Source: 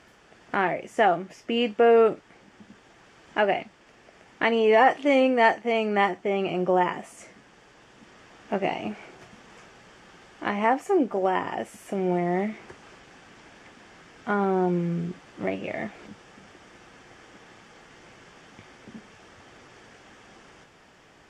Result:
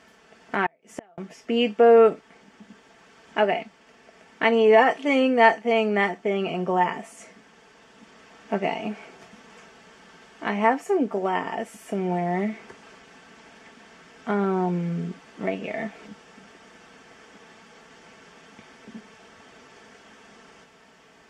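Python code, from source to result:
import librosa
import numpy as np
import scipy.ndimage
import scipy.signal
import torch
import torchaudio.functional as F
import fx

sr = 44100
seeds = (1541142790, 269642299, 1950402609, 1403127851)

y = fx.highpass(x, sr, hz=98.0, slope=6)
y = y + 0.53 * np.pad(y, (int(4.5 * sr / 1000.0), 0))[:len(y)]
y = fx.gate_flip(y, sr, shuts_db=-20.0, range_db=-35, at=(0.66, 1.18))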